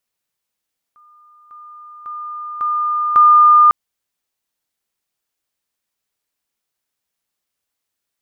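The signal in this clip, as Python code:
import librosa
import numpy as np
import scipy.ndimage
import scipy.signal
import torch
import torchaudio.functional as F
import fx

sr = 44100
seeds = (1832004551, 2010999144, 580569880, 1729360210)

y = fx.level_ladder(sr, hz=1210.0, from_db=-45.5, step_db=10.0, steps=5, dwell_s=0.55, gap_s=0.0)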